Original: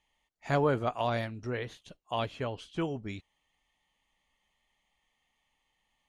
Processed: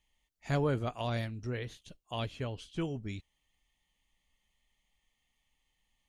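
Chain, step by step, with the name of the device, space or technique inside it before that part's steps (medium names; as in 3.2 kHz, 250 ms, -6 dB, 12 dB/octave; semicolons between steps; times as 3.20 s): smiley-face EQ (bass shelf 96 Hz +9 dB; peaking EQ 920 Hz -6 dB 1.9 oct; treble shelf 5.1 kHz +4.5 dB); trim -2 dB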